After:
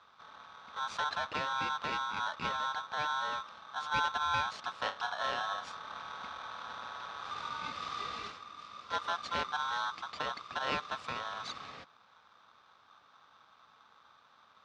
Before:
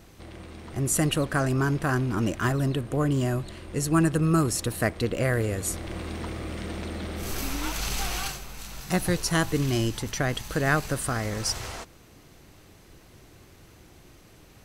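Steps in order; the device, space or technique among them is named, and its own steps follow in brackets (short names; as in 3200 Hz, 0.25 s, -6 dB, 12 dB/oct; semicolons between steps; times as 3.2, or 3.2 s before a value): ring modulator pedal into a guitar cabinet (polarity switched at an audio rate 1200 Hz; speaker cabinet 80–4300 Hz, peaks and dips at 130 Hz -3 dB, 360 Hz -7 dB, 1900 Hz -4 dB, 3000 Hz -4 dB); 4.81–5.68 flutter echo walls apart 5 m, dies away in 0.24 s; gain -9 dB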